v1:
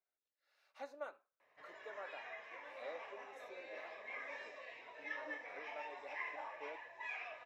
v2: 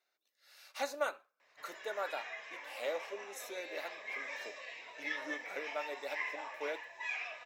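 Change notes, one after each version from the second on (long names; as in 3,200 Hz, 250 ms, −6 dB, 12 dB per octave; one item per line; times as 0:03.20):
speech +10.0 dB
master: remove low-pass filter 1,200 Hz 6 dB per octave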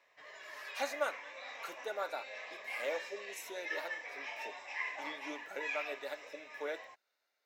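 background: entry −1.40 s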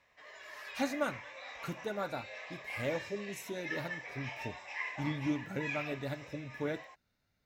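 speech: remove high-pass filter 450 Hz 24 dB per octave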